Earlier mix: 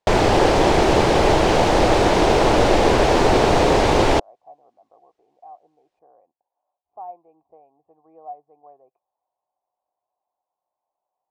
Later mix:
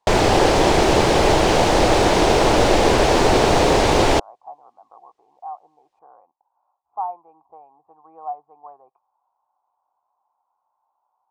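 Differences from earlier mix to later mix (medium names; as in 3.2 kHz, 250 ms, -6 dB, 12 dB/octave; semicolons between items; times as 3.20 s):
speech: add high-order bell 1.1 kHz +15 dB 1.1 oct; master: add treble shelf 4.3 kHz +6 dB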